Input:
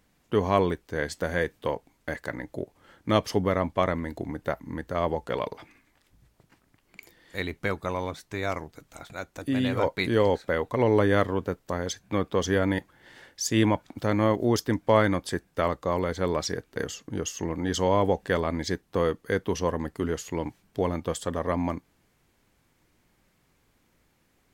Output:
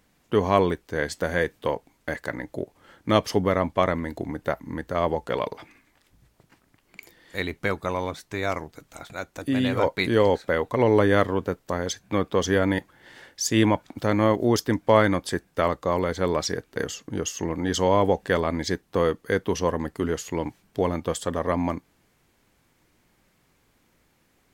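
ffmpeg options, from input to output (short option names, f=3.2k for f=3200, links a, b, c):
-af "lowshelf=f=130:g=-3,volume=3dB"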